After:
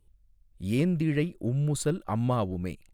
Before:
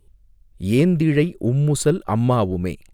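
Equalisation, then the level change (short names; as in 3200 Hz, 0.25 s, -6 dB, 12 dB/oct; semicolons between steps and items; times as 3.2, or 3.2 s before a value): bell 400 Hz -7.5 dB 0.21 oct; -8.5 dB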